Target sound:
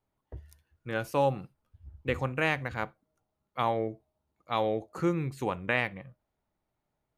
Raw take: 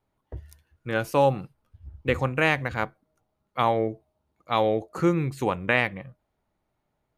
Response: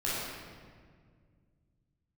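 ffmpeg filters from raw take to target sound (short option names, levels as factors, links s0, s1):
-filter_complex "[0:a]asplit=2[s0][s1];[1:a]atrim=start_sample=2205,atrim=end_sample=3969[s2];[s1][s2]afir=irnorm=-1:irlink=0,volume=0.0422[s3];[s0][s3]amix=inputs=2:normalize=0,volume=0.501"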